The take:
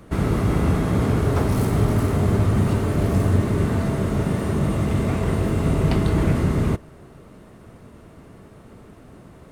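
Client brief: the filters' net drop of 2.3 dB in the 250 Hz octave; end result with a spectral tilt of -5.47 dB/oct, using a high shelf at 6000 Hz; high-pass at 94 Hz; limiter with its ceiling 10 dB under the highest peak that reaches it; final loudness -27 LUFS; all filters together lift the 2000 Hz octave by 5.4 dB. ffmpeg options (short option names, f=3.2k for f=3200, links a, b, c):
-af "highpass=94,equalizer=f=250:t=o:g=-3,equalizer=f=2k:t=o:g=7.5,highshelf=f=6k:g=-7.5,volume=0.5dB,alimiter=limit=-18.5dB:level=0:latency=1"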